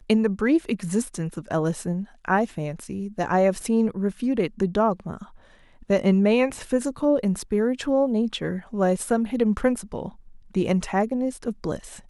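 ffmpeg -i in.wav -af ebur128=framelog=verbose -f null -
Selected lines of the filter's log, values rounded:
Integrated loudness:
  I:         -24.2 LUFS
  Threshold: -34.5 LUFS
Loudness range:
  LRA:         2.4 LU
  Threshold: -44.3 LUFS
  LRA low:   -25.4 LUFS
  LRA high:  -23.1 LUFS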